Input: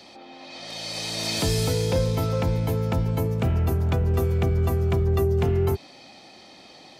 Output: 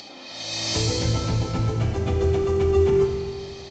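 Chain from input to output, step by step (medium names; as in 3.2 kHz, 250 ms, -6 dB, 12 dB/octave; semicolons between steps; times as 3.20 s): doubling 28 ms -4 dB; plain phase-vocoder stretch 0.53×; tone controls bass -1 dB, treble +5 dB; upward compressor, threshold -38 dBFS; Schroeder reverb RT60 2.1 s, combs from 27 ms, DRR 2.5 dB; trim +1 dB; A-law 128 kbps 16 kHz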